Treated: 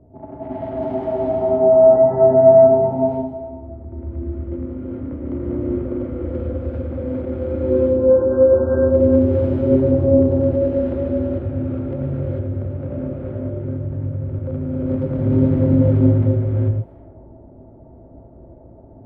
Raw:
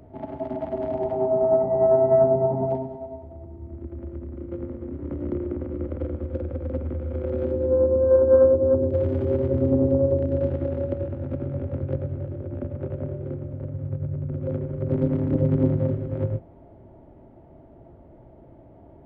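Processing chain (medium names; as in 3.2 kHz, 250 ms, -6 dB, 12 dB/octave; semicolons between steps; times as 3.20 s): gated-style reverb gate 470 ms rising, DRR -6 dB; level-controlled noise filter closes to 620 Hz, open at -18.5 dBFS; trim -1.5 dB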